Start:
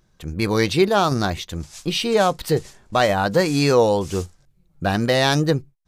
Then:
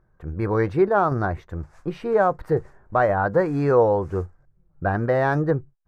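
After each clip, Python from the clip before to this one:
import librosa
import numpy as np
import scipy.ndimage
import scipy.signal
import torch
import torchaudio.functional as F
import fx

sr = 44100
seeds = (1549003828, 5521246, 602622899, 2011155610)

y = fx.curve_eq(x, sr, hz=(110.0, 220.0, 380.0, 1600.0, 3200.0), db=(0, -7, -1, -1, -27))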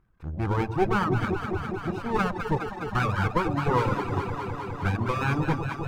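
y = fx.lower_of_two(x, sr, delay_ms=0.77)
y = fx.echo_alternate(y, sr, ms=103, hz=850.0, feedback_pct=90, wet_db=-4.0)
y = fx.dereverb_blind(y, sr, rt60_s=1.2)
y = y * 10.0 ** (-3.0 / 20.0)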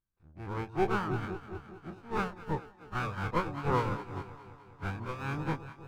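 y = fx.spec_dilate(x, sr, span_ms=60)
y = fx.upward_expand(y, sr, threshold_db=-31.0, expansion=2.5)
y = y * 10.0 ** (-6.5 / 20.0)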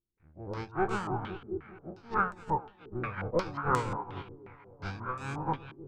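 y = fx.filter_held_lowpass(x, sr, hz=5.6, low_hz=370.0, high_hz=7900.0)
y = y * 10.0 ** (-2.5 / 20.0)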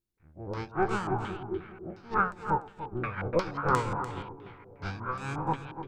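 y = x + 10.0 ** (-11.5 / 20.0) * np.pad(x, (int(294 * sr / 1000.0), 0))[:len(x)]
y = y * 10.0 ** (2.0 / 20.0)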